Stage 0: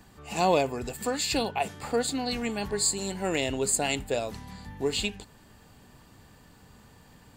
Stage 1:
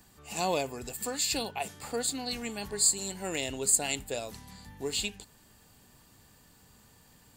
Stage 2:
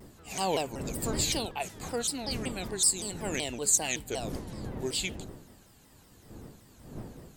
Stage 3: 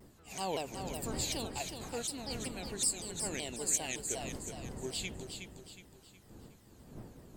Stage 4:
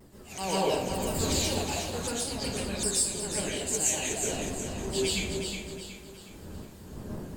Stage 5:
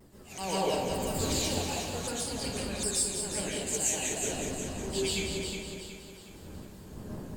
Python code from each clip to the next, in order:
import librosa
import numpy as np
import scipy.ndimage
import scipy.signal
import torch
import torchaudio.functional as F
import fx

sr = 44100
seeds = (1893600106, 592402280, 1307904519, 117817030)

y1 = fx.high_shelf(x, sr, hz=4500.0, db=12.0)
y1 = y1 * librosa.db_to_amplitude(-7.0)
y2 = fx.dmg_wind(y1, sr, seeds[0], corner_hz=290.0, level_db=-42.0)
y2 = fx.vibrato_shape(y2, sr, shape='saw_down', rate_hz=5.3, depth_cents=250.0)
y3 = fx.echo_feedback(y2, sr, ms=366, feedback_pct=40, wet_db=-7.0)
y3 = y3 * librosa.db_to_amplitude(-7.0)
y4 = fx.rider(y3, sr, range_db=4, speed_s=2.0)
y4 = fx.rev_plate(y4, sr, seeds[1], rt60_s=0.64, hf_ratio=0.75, predelay_ms=110, drr_db=-6.5)
y5 = y4 + 10.0 ** (-8.0 / 20.0) * np.pad(y4, (int(191 * sr / 1000.0), 0))[:len(y4)]
y5 = y5 * librosa.db_to_amplitude(-2.5)